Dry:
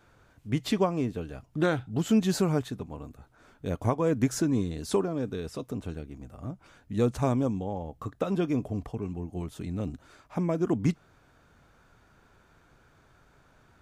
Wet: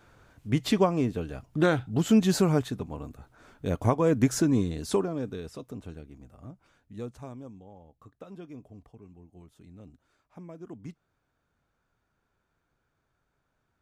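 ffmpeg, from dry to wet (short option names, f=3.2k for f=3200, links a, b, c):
-af "volume=2.5dB,afade=t=out:st=4.53:d=1.11:silence=0.398107,afade=t=out:st=6.15:d=1.13:silence=0.281838"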